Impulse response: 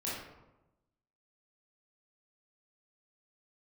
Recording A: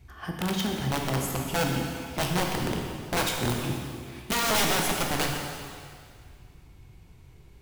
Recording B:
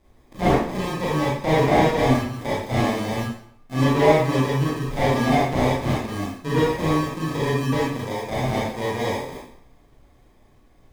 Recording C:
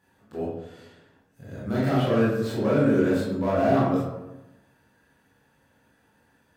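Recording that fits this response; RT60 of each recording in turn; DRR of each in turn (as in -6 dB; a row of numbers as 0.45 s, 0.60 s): C; 2.1 s, 0.65 s, 1.0 s; 0.5 dB, -8.0 dB, -8.0 dB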